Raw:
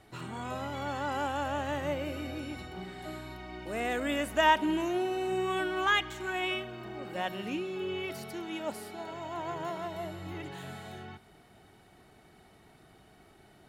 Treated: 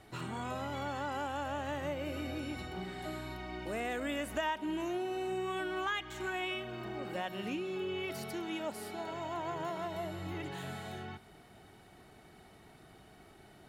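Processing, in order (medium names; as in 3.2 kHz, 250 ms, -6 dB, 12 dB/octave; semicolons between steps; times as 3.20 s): compression 3:1, threshold -36 dBFS, peak gain reduction 13.5 dB; trim +1 dB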